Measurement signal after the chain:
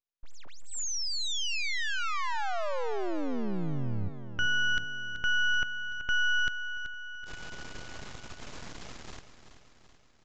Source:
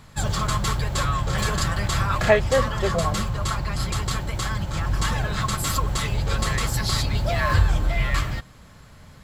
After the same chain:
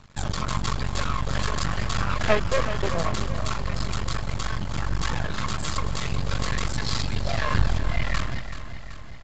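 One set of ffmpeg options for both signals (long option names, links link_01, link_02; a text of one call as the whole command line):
ffmpeg -i in.wav -af "aeval=exprs='max(val(0),0)':channel_layout=same,aecho=1:1:381|762|1143|1524|1905|2286:0.266|0.152|0.0864|0.0493|0.0281|0.016,aresample=16000,aresample=44100" out.wav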